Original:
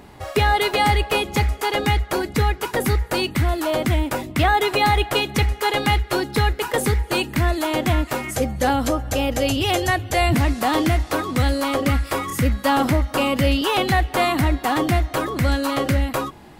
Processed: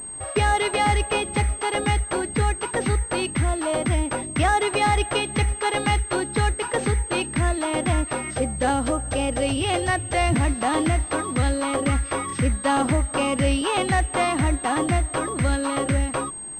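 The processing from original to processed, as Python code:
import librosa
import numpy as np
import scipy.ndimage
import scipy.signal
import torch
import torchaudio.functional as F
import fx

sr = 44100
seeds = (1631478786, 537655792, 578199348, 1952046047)

y = fx.pwm(x, sr, carrier_hz=8400.0)
y = y * 10.0 ** (-2.5 / 20.0)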